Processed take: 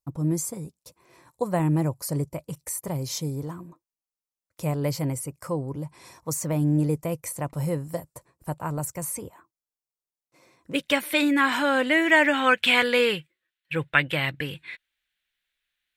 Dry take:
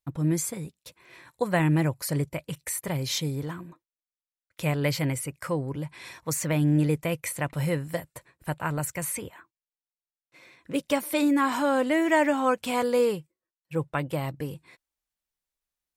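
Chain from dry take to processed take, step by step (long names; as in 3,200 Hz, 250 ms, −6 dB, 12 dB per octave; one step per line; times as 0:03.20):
flat-topped bell 2,400 Hz −10 dB, from 0:10.73 +9 dB, from 0:12.33 +16 dB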